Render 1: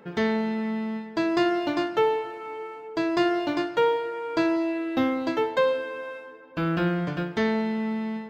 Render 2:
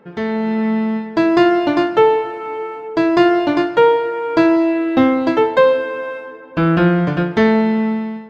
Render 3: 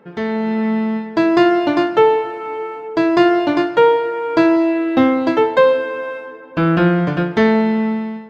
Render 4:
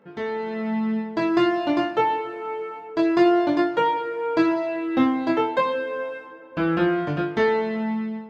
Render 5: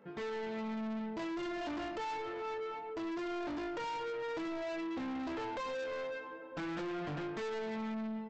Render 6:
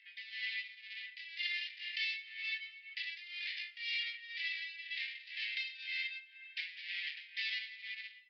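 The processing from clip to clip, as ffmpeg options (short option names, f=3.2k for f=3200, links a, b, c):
-af "highshelf=f=3.5k:g=-9.5,dynaudnorm=f=130:g=7:m=10dB,volume=2dB"
-af "lowshelf=f=66:g=-6.5"
-af "flanger=delay=20:depth=4.1:speed=0.28,volume=-3.5dB"
-af "alimiter=limit=-18dB:level=0:latency=1:release=187,aresample=16000,asoftclip=type=tanh:threshold=-33dB,aresample=44100,volume=-4dB"
-af "tremolo=f=2:d=0.8,asuperpass=centerf=3900:order=20:qfactor=0.68,aresample=11025,aresample=44100,volume=15dB"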